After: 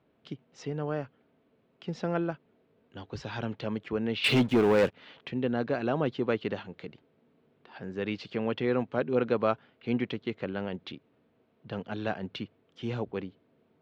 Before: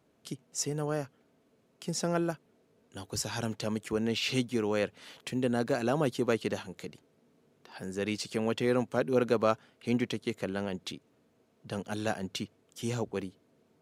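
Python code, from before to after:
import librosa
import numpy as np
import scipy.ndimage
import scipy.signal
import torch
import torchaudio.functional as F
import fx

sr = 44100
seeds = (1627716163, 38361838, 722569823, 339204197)

y = scipy.signal.sosfilt(scipy.signal.butter(4, 3600.0, 'lowpass', fs=sr, output='sos'), x)
y = fx.leveller(y, sr, passes=3, at=(4.24, 4.94))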